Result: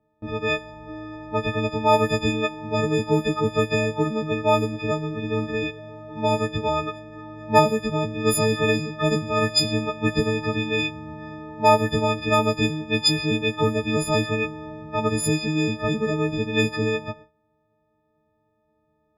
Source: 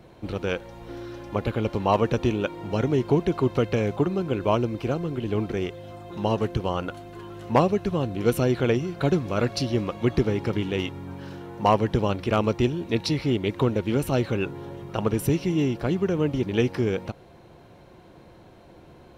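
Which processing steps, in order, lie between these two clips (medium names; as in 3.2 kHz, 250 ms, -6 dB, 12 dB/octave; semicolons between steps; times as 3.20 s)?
partials quantised in pitch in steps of 6 st; level-controlled noise filter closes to 1.2 kHz, open at -15.5 dBFS; gate with hold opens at -36 dBFS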